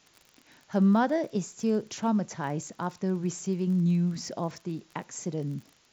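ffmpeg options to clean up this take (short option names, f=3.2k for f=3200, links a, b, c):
-af "adeclick=t=4,agate=range=-21dB:threshold=-53dB"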